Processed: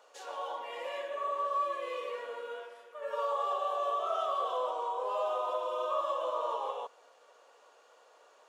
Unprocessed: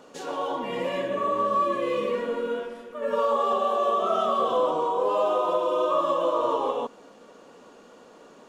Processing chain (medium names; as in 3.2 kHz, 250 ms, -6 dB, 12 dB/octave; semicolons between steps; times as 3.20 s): high-pass 540 Hz 24 dB/octave; trim -7.5 dB